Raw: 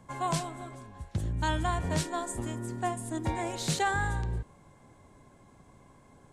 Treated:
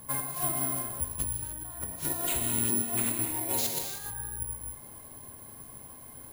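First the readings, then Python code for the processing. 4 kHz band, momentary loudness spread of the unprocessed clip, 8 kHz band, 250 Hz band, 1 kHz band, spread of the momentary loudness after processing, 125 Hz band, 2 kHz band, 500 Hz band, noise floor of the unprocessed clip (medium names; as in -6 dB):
-1.0 dB, 11 LU, +10.0 dB, -2.5 dB, -8.0 dB, 18 LU, -7.0 dB, -7.0 dB, -4.5 dB, -58 dBFS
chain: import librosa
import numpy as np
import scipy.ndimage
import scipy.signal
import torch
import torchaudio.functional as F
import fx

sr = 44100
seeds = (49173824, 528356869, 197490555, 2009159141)

y = fx.peak_eq(x, sr, hz=3400.0, db=-6.5, octaves=0.23)
y = fx.hum_notches(y, sr, base_hz=50, count=7)
y = fx.over_compress(y, sr, threshold_db=-37.0, ratio=-0.5)
y = fx.rev_gated(y, sr, seeds[0], gate_ms=330, shape='flat', drr_db=2.0)
y = (np.kron(y[::4], np.eye(4)[0]) * 4)[:len(y)]
y = y * librosa.db_to_amplitude(-2.5)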